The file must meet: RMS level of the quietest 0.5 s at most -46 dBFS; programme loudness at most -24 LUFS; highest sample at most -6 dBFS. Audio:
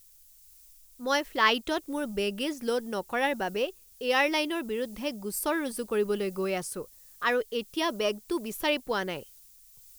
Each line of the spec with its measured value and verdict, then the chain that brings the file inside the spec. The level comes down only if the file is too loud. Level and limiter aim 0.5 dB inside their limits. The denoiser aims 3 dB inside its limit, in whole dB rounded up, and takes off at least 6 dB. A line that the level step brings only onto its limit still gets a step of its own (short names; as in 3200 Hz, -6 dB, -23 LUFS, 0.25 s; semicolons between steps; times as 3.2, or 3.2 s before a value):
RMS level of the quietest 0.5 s -56 dBFS: OK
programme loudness -29.5 LUFS: OK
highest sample -8.0 dBFS: OK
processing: none